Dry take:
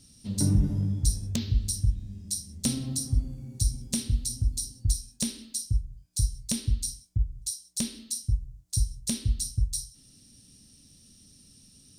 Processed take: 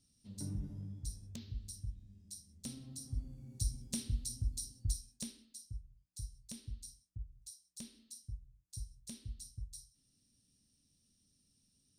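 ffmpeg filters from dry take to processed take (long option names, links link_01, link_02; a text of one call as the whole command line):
ffmpeg -i in.wav -af "volume=-10dB,afade=type=in:start_time=2.92:duration=0.65:silence=0.398107,afade=type=out:start_time=4.88:duration=0.58:silence=0.354813" out.wav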